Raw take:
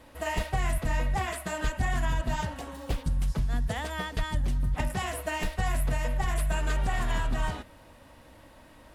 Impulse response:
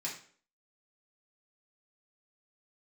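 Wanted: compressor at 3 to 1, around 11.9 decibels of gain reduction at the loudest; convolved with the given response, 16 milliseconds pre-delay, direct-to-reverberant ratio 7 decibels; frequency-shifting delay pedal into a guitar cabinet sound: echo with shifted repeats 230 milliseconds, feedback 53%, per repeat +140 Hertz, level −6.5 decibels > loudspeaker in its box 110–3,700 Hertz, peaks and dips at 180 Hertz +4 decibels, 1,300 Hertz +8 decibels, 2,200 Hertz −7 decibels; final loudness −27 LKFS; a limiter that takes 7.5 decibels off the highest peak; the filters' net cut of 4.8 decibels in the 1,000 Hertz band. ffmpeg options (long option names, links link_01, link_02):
-filter_complex "[0:a]equalizer=frequency=1000:width_type=o:gain=-8.5,acompressor=threshold=-41dB:ratio=3,alimiter=level_in=10dB:limit=-24dB:level=0:latency=1,volume=-10dB,asplit=2[link_01][link_02];[1:a]atrim=start_sample=2205,adelay=16[link_03];[link_02][link_03]afir=irnorm=-1:irlink=0,volume=-8.5dB[link_04];[link_01][link_04]amix=inputs=2:normalize=0,asplit=8[link_05][link_06][link_07][link_08][link_09][link_10][link_11][link_12];[link_06]adelay=230,afreqshift=140,volume=-6.5dB[link_13];[link_07]adelay=460,afreqshift=280,volume=-12dB[link_14];[link_08]adelay=690,afreqshift=420,volume=-17.5dB[link_15];[link_09]adelay=920,afreqshift=560,volume=-23dB[link_16];[link_10]adelay=1150,afreqshift=700,volume=-28.6dB[link_17];[link_11]adelay=1380,afreqshift=840,volume=-34.1dB[link_18];[link_12]adelay=1610,afreqshift=980,volume=-39.6dB[link_19];[link_05][link_13][link_14][link_15][link_16][link_17][link_18][link_19]amix=inputs=8:normalize=0,highpass=110,equalizer=frequency=180:width_type=q:width=4:gain=4,equalizer=frequency=1300:width_type=q:width=4:gain=8,equalizer=frequency=2200:width_type=q:width=4:gain=-7,lowpass=frequency=3700:width=0.5412,lowpass=frequency=3700:width=1.3066,volume=16dB"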